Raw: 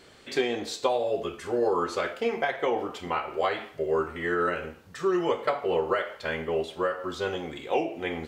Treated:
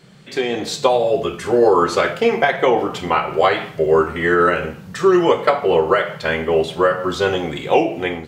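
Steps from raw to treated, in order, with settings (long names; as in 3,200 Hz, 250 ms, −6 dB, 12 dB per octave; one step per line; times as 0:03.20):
noise in a band 120–200 Hz −50 dBFS
automatic gain control gain up to 12 dB
level +1 dB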